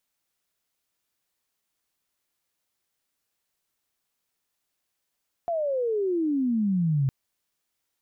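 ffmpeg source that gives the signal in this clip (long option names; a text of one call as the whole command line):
ffmpeg -f lavfi -i "aevalsrc='pow(10,(-24+4*t/1.61)/20)*sin(2*PI*700*1.61/log(130/700)*(exp(log(130/700)*t/1.61)-1))':duration=1.61:sample_rate=44100" out.wav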